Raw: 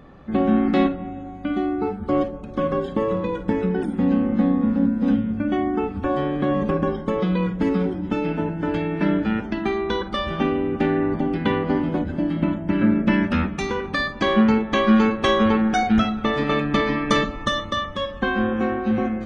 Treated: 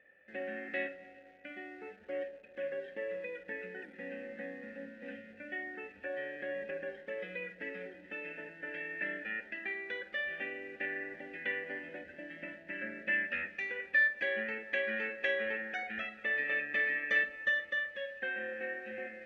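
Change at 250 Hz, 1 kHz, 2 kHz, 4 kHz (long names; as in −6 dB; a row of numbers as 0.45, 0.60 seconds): −30.0, −26.0, −3.0, −18.0 decibels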